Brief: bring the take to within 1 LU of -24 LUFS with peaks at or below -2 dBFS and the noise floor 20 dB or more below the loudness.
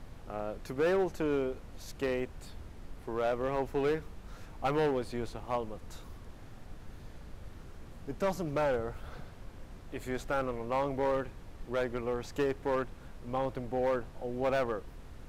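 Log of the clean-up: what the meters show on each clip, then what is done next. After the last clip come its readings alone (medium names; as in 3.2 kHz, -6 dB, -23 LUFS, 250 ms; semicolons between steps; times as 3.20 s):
clipped samples 1.2%; clipping level -24.0 dBFS; noise floor -50 dBFS; noise floor target -54 dBFS; loudness -34.0 LUFS; peak level -24.0 dBFS; loudness target -24.0 LUFS
-> clip repair -24 dBFS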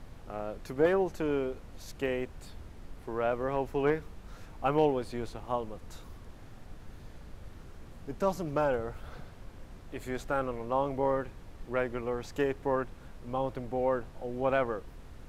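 clipped samples 0.0%; noise floor -50 dBFS; noise floor target -53 dBFS
-> noise print and reduce 6 dB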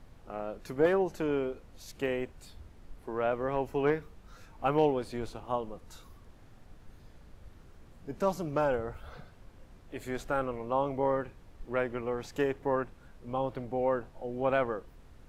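noise floor -55 dBFS; loudness -32.5 LUFS; peak level -15.0 dBFS; loudness target -24.0 LUFS
-> trim +8.5 dB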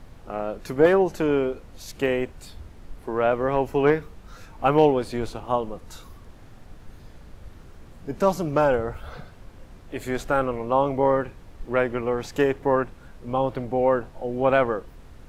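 loudness -24.0 LUFS; peak level -6.5 dBFS; noise floor -47 dBFS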